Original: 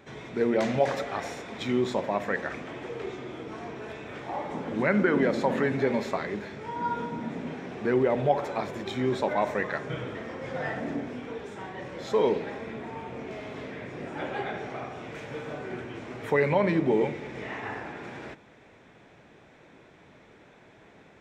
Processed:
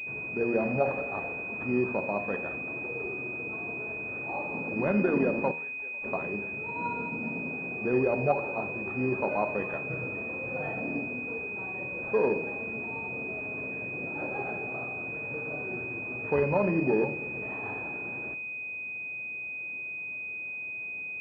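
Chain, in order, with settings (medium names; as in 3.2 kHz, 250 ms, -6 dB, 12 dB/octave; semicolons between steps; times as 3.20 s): 5.51–6.04 s: differentiator; de-hum 78.6 Hz, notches 30; class-D stage that switches slowly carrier 2.5 kHz; trim -1.5 dB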